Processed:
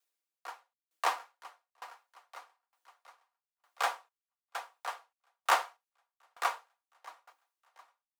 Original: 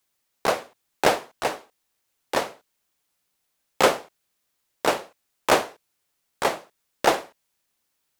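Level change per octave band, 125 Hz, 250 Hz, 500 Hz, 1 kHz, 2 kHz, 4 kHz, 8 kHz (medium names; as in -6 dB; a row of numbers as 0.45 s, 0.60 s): under -40 dB, under -30 dB, -21.0 dB, -8.5 dB, -10.0 dB, -12.5 dB, -12.5 dB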